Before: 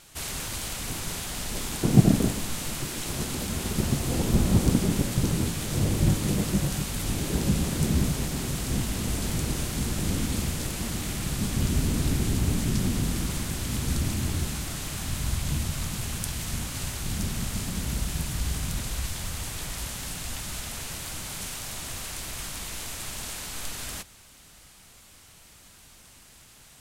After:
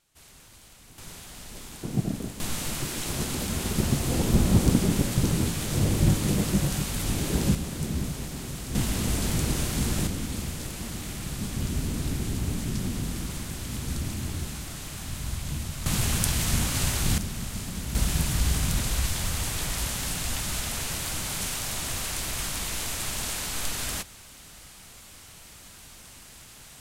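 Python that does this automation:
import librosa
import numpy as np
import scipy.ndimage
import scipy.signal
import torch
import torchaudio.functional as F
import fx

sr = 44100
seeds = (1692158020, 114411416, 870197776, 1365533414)

y = fx.gain(x, sr, db=fx.steps((0.0, -18.5), (0.98, -10.0), (2.4, 1.0), (7.55, -5.5), (8.75, 2.0), (10.07, -4.0), (15.86, 6.5), (17.18, -3.0), (17.95, 4.5)))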